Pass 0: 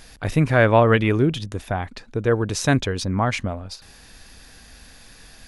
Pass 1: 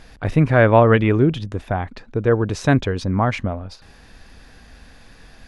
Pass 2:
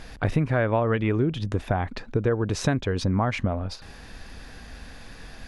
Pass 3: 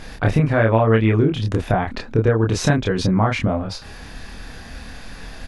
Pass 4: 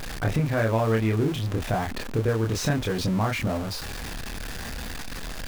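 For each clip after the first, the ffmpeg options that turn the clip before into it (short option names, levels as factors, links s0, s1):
-af "lowpass=f=1900:p=1,volume=1.41"
-af "acompressor=threshold=0.0708:ratio=6,volume=1.41"
-filter_complex "[0:a]asplit=2[s0][s1];[s1]adelay=27,volume=0.794[s2];[s0][s2]amix=inputs=2:normalize=0,volume=1.68"
-af "aeval=exprs='val(0)+0.5*0.0891*sgn(val(0))':c=same,volume=0.355"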